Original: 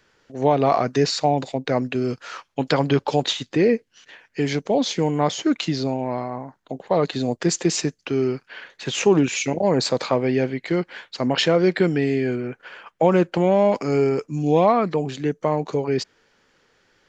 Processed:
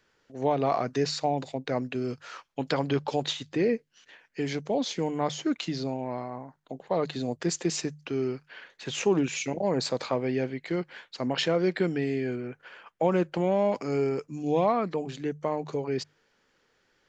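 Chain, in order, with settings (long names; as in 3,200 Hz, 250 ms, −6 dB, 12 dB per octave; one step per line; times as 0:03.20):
mains-hum notches 50/100/150 Hz
level −7.5 dB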